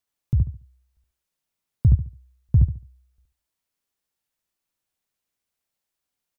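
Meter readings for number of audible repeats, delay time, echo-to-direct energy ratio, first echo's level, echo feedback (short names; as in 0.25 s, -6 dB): 3, 71 ms, -2.5 dB, -3.0 dB, 27%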